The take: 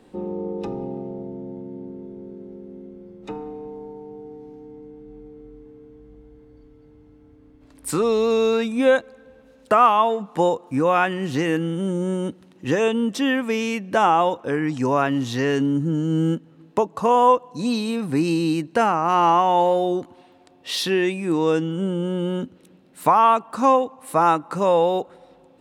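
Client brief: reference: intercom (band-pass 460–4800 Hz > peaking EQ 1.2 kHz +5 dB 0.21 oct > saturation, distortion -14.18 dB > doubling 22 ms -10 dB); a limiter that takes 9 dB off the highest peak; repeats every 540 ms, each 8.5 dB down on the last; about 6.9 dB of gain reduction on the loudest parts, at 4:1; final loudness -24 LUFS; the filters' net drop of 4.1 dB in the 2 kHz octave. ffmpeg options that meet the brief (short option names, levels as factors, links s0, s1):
-filter_complex "[0:a]equalizer=f=2000:t=o:g=-6,acompressor=threshold=0.1:ratio=4,alimiter=limit=0.133:level=0:latency=1,highpass=460,lowpass=4800,equalizer=f=1200:t=o:w=0.21:g=5,aecho=1:1:540|1080|1620|2160:0.376|0.143|0.0543|0.0206,asoftclip=threshold=0.0708,asplit=2[s0][s1];[s1]adelay=22,volume=0.316[s2];[s0][s2]amix=inputs=2:normalize=0,volume=2.37"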